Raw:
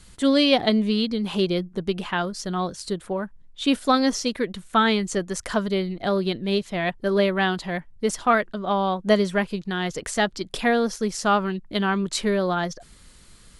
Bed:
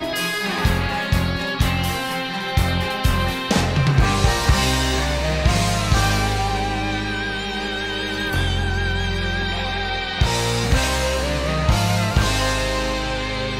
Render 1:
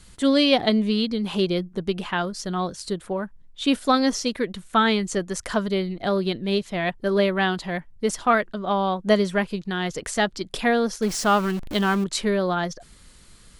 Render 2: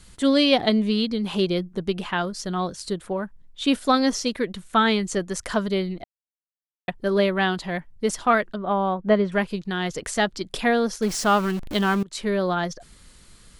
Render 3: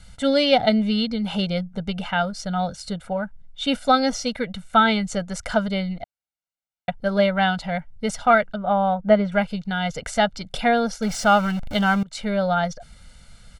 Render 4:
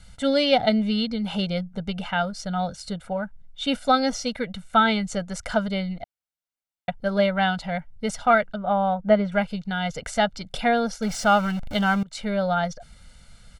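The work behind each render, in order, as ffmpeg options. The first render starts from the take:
-filter_complex "[0:a]asettb=1/sr,asplit=3[s0][s1][s2];[s0]atrim=end=11.024[s3];[s1]atrim=start=11.02:end=12.04,asetpts=PTS-STARTPTS,afade=t=in:d=0.004:c=qsin,afade=t=out:st=1.016:d=0.004:c=qsin,aeval=exprs='val(0)+0.5*0.0316*sgn(val(0))':c=same[s4];[s2]atrim=start=12.036[s5];[s3][s4]acrossfade=d=0.004:c1=hsin:c2=qsin[s6];[s6][s5]acrossfade=d=0.004:c1=qsin:c2=hsin"
-filter_complex "[0:a]asettb=1/sr,asplit=3[s0][s1][s2];[s0]atrim=end=8.564[s3];[s1]atrim=start=8.56:end=9.32,asetpts=PTS-STARTPTS,afade=t=in:d=0.004:c=qsin,afade=t=out:st=0.756:d=0.004:c=qsin,lowpass=2100[s4];[s2]atrim=start=9.316[s5];[s3][s4]acrossfade=d=0.004:c1=hsin:c2=qsin[s6];[s6][s5]acrossfade=d=0.004:c1=qsin:c2=hsin,asplit=4[s7][s8][s9][s10];[s7]atrim=end=6.04,asetpts=PTS-STARTPTS,afade=t=out:st=6.036:d=0.004:c=hsin[s11];[s8]atrim=start=6.04:end=6.88,asetpts=PTS-STARTPTS,volume=0[s12];[s9]atrim=start=6.88:end=12.03,asetpts=PTS-STARTPTS,afade=t=in:d=0.004:c=hsin,afade=t=out:st=5.146:d=0.004:c=hsin:silence=0.0668344[s13];[s10]atrim=start=12.03,asetpts=PTS-STARTPTS,afade=t=in:d=0.45:c=qsin:silence=0.0668344[s14];[s11][s12][s13][s14]concat=n=4:v=0:a=1"
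-af "highshelf=f=7700:g=-10.5,aecho=1:1:1.4:0.89"
-af "volume=0.794"

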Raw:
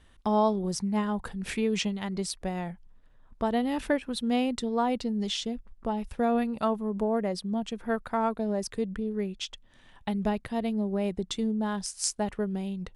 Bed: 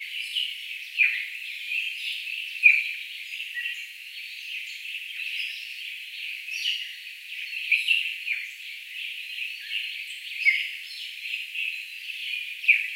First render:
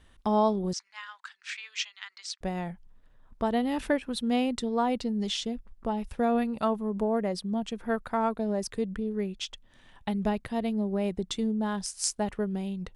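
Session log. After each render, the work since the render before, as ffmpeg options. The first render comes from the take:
-filter_complex "[0:a]asettb=1/sr,asplit=3[s0][s1][s2];[s0]atrim=end=0.734[s3];[s1]atrim=start=0.73:end=2.41,asetpts=PTS-STARTPTS,afade=t=in:d=0.004:c=qsin,afade=t=out:st=1.676:d=0.004:c=qsin,asuperpass=centerf=3100:order=8:qfactor=0.54[s4];[s2]atrim=start=2.406[s5];[s3][s4]acrossfade=d=0.004:c1=hsin:c2=qsin[s6];[s6][s5]acrossfade=d=0.004:c1=qsin:c2=hsin"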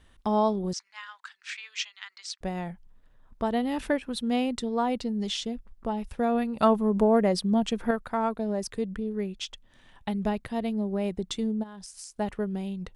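-filter_complex "[0:a]asettb=1/sr,asplit=3[s0][s1][s2];[s0]atrim=end=6.594[s3];[s1]atrim=start=6.59:end=7.91,asetpts=PTS-STARTPTS,afade=t=in:d=0.004:c=qsin,afade=t=out:st=1.316:d=0.004:c=qsin,acontrast=62[s4];[s2]atrim=start=7.906[s5];[s3][s4]acrossfade=d=0.004:c1=hsin:c2=qsin[s6];[s6][s5]acrossfade=d=0.004:c1=qsin:c2=hsin,asplit=3[s7][s8][s9];[s7]afade=t=out:st=11.62:d=0.02[s10];[s8]acompressor=threshold=0.0112:ratio=20:attack=3.2:release=140:knee=1:detection=peak,afade=t=in:st=11.62:d=0.02,afade=t=out:st=12.15:d=0.02[s11];[s9]afade=t=in:st=12.15:d=0.02[s12];[s10][s11][s12]amix=inputs=3:normalize=0"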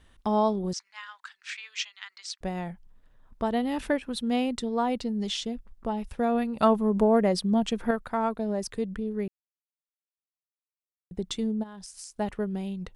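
-filter_complex "[0:a]asplit=3[s0][s1][s2];[s0]atrim=end=9.28,asetpts=PTS-STARTPTS,afade=t=out:st=9.276:d=0.004:c=hsin[s3];[s1]atrim=start=9.28:end=11.11,asetpts=PTS-STARTPTS,volume=0[s4];[s2]atrim=start=11.11,asetpts=PTS-STARTPTS,afade=t=in:d=0.004:c=hsin[s5];[s3][s4][s5]concat=n=3:v=0:a=1"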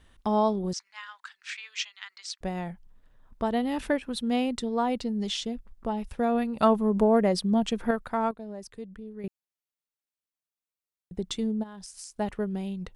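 -filter_complex "[0:a]asplit=3[s0][s1][s2];[s0]atrim=end=8.312[s3];[s1]atrim=start=8.308:end=9.242,asetpts=PTS-STARTPTS,volume=0.316[s4];[s2]atrim=start=9.238[s5];[s3][s4]acrossfade=d=0.004:c1=hsin:c2=hsin[s6];[s6][s5]acrossfade=d=0.004:c1=hsin:c2=hsin"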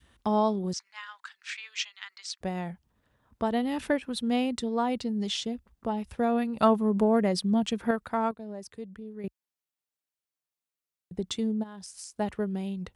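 -af "highpass=f=52:w=0.5412,highpass=f=52:w=1.3066,adynamicequalizer=threshold=0.02:dfrequency=640:dqfactor=0.75:tfrequency=640:tqfactor=0.75:attack=5:release=100:ratio=0.375:range=2.5:mode=cutabove:tftype=bell"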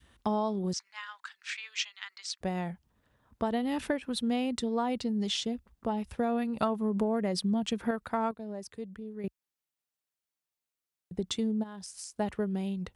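-af "acompressor=threshold=0.0562:ratio=10"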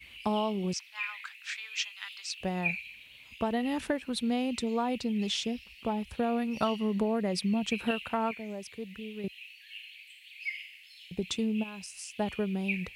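-filter_complex "[1:a]volume=0.168[s0];[0:a][s0]amix=inputs=2:normalize=0"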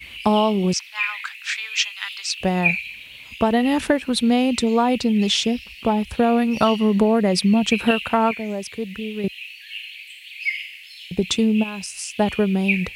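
-af "volume=3.98,alimiter=limit=0.708:level=0:latency=1"

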